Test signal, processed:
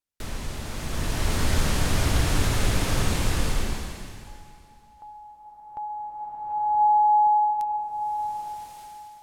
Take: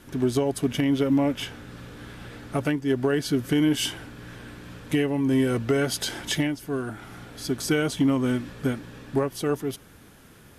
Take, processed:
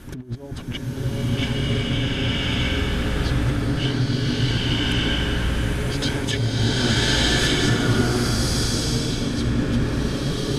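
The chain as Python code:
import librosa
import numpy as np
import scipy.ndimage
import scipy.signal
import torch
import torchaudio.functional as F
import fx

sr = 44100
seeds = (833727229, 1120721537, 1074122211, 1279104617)

y = fx.env_lowpass_down(x, sr, base_hz=1300.0, full_db=-18.5)
y = fx.low_shelf(y, sr, hz=150.0, db=10.5)
y = fx.over_compress(y, sr, threshold_db=-28.0, ratio=-0.5)
y = fx.rev_bloom(y, sr, seeds[0], attack_ms=1200, drr_db=-10.5)
y = y * librosa.db_to_amplitude(-2.0)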